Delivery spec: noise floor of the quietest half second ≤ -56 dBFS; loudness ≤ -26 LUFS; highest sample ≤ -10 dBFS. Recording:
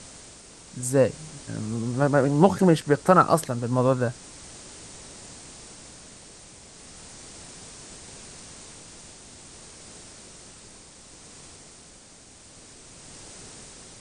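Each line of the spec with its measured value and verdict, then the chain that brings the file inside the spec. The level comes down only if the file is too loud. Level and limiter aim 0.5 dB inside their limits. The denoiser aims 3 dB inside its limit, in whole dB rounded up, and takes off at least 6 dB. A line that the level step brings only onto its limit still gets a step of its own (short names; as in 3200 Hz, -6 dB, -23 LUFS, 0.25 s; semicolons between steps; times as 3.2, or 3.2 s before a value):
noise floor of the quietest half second -50 dBFS: fail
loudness -22.5 LUFS: fail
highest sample -3.5 dBFS: fail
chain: denoiser 6 dB, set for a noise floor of -50 dBFS; gain -4 dB; limiter -10.5 dBFS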